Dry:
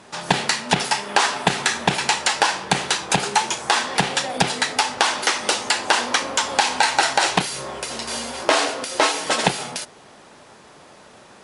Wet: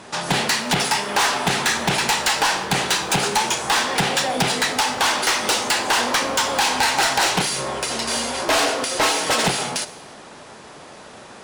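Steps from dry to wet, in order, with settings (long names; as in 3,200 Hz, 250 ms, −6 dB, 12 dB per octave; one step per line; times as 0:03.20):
soft clipping −19.5 dBFS, distortion −7 dB
on a send: convolution reverb, pre-delay 3 ms, DRR 13.5 dB
on the sum: level +5.5 dB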